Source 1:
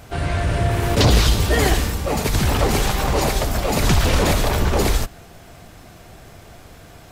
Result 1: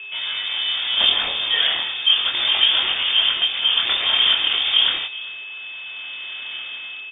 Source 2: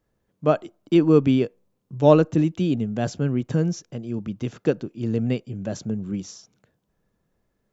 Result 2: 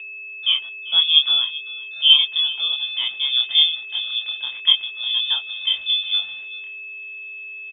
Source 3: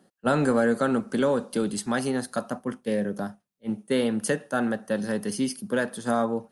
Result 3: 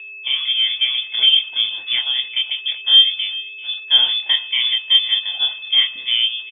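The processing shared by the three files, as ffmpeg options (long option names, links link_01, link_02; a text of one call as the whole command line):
ffmpeg -i in.wav -filter_complex "[0:a]highpass=150,equalizer=frequency=530:width_type=o:width=0.26:gain=12.5,dynaudnorm=framelen=550:gausssize=3:maxgain=14dB,flanger=delay=22.5:depth=4.3:speed=0.36,aeval=exprs='val(0)+0.0251*sin(2*PI*1100*n/s)':channel_layout=same,aeval=exprs='val(0)*gte(abs(val(0)),0.00944)':channel_layout=same,asplit=2[link_01][link_02];[link_02]adelay=390.7,volume=-18dB,highshelf=frequency=4000:gain=-8.79[link_03];[link_01][link_03]amix=inputs=2:normalize=0,lowpass=frequency=3100:width_type=q:width=0.5098,lowpass=frequency=3100:width_type=q:width=0.6013,lowpass=frequency=3100:width_type=q:width=0.9,lowpass=frequency=3100:width_type=q:width=2.563,afreqshift=-3700" out.wav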